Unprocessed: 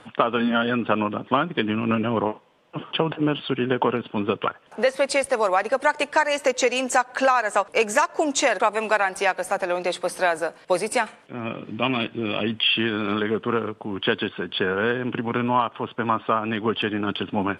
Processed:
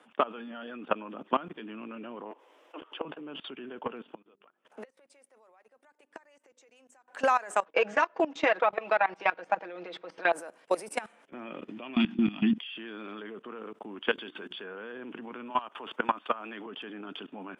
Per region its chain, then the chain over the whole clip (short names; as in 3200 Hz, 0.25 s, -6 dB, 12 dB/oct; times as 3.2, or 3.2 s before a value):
2.31–3.05 steep high-pass 280 Hz 48 dB/oct + upward compressor, threshold -33 dBFS
4.04–7.08 notches 50/100/150/200/250/300/350/400 Hz + flipped gate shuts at -18 dBFS, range -25 dB
7.65–10.33 LPF 4200 Hz 24 dB/oct + expander -42 dBFS + comb 6.2 ms, depth 75%
11.96–12.58 EQ curve 120 Hz 0 dB, 190 Hz +14 dB, 280 Hz +8 dB, 520 Hz -25 dB, 760 Hz -1 dB, 1100 Hz -3 dB, 3600 Hz 0 dB, 5500 Hz +4 dB, 8000 Hz -7 dB + fast leveller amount 50%
14.07–14.64 high shelf 3100 Hz +7.5 dB + notches 60/120/180/240/300/360 Hz
15.5–16.66 tilt +2 dB/oct + three-band squash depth 100%
whole clip: HPF 210 Hz 24 dB/oct; bell 4300 Hz -6.5 dB 0.37 oct; level quantiser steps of 19 dB; gain -3.5 dB